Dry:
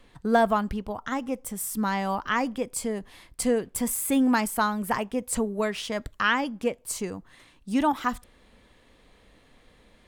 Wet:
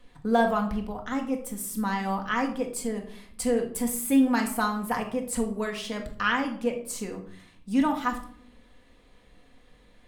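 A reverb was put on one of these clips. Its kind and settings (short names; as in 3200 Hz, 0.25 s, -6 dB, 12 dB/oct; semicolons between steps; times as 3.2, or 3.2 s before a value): shoebox room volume 820 m³, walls furnished, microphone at 1.9 m; gain -4 dB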